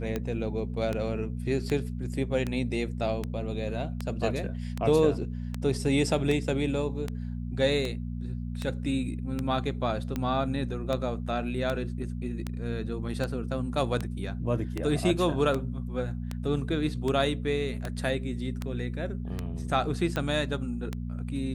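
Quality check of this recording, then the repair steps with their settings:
hum 60 Hz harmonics 4 -34 dBFS
tick 78 rpm -17 dBFS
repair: de-click; de-hum 60 Hz, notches 4

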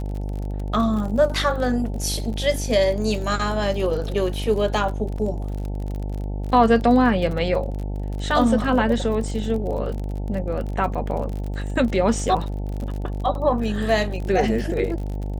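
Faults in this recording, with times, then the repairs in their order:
buzz 50 Hz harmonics 18 -27 dBFS
crackle 41/s -29 dBFS
5.18 gap 3.9 ms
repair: de-click; de-hum 50 Hz, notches 18; interpolate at 5.18, 3.9 ms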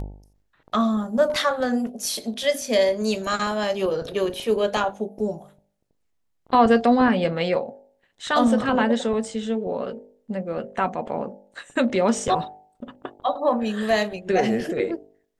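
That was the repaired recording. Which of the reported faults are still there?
none

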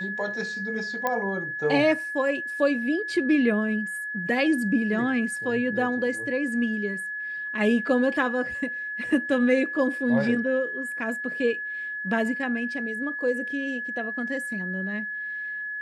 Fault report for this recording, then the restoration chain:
tone 1700 Hz -30 dBFS
1.07 pop -12 dBFS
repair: de-click; notch 1700 Hz, Q 30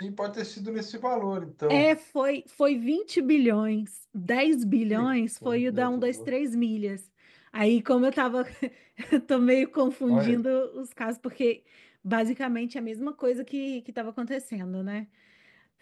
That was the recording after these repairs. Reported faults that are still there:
none

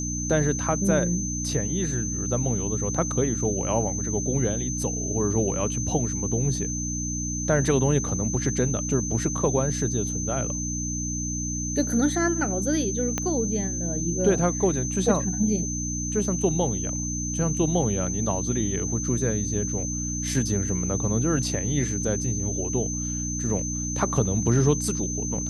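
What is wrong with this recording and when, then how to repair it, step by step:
hum 60 Hz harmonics 5 -31 dBFS
tone 6200 Hz -30 dBFS
13.18 pop -11 dBFS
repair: de-click; de-hum 60 Hz, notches 5; notch 6200 Hz, Q 30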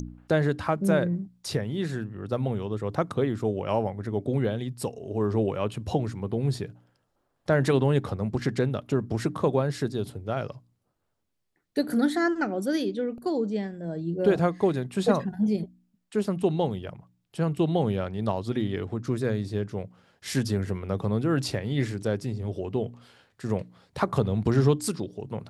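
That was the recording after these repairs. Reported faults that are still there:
13.18 pop

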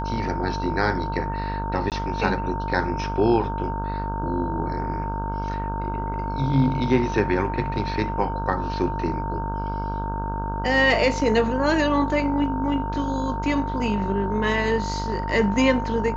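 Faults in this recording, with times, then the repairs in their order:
buzz 50 Hz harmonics 32 -29 dBFS
tone 910 Hz -29 dBFS
1.9–1.92 gap 18 ms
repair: notch 910 Hz, Q 30; de-hum 50 Hz, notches 32; interpolate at 1.9, 18 ms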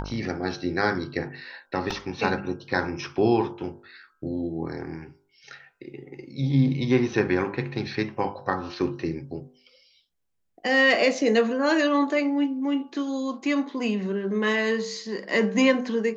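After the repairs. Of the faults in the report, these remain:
none

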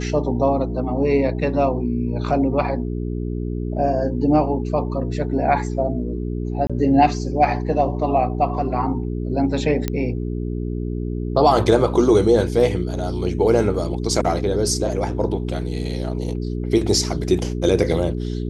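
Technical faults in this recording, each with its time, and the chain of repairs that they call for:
hum 60 Hz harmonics 7 -25 dBFS
6.67–6.7 gap 26 ms
9.88 pop -8 dBFS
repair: de-click; de-hum 60 Hz, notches 7; interpolate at 6.67, 26 ms

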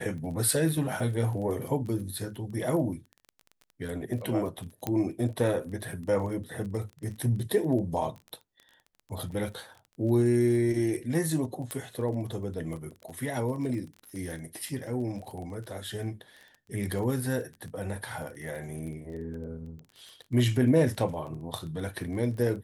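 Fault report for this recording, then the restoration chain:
crackle 23/s -37 dBFS
4.87 pop -15 dBFS
11.71 pop -19 dBFS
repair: de-click

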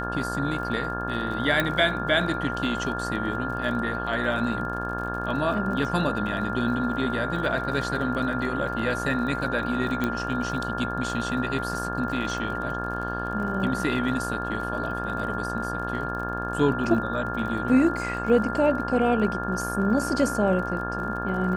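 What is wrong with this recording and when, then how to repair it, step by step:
buzz 60 Hz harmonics 29 -32 dBFS
crackle 42/s -35 dBFS
tone 1400 Hz -31 dBFS
1.6 pop -10 dBFS
10.04 pop -13 dBFS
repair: de-click; de-hum 60 Hz, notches 29; notch 1400 Hz, Q 30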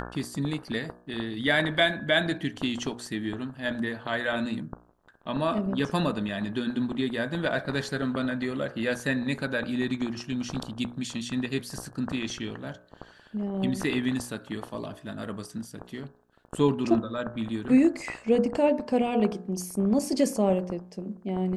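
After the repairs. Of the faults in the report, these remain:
none

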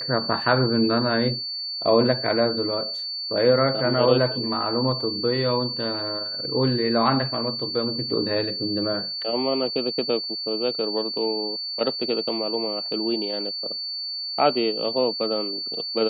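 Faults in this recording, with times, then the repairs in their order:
tone 4500 Hz -28 dBFS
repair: notch 4500 Hz, Q 30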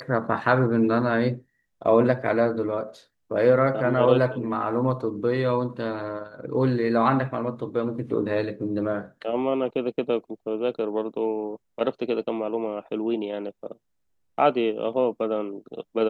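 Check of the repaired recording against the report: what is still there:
none

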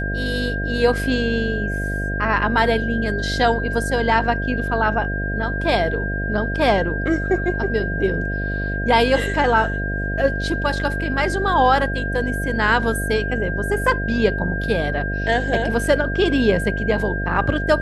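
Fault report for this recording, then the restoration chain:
buzz 50 Hz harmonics 14 -25 dBFS
tone 1600 Hz -26 dBFS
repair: notch 1600 Hz, Q 30; de-hum 50 Hz, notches 14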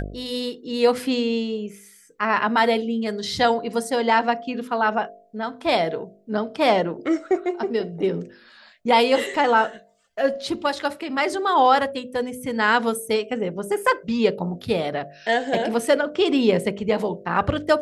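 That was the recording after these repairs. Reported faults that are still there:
none

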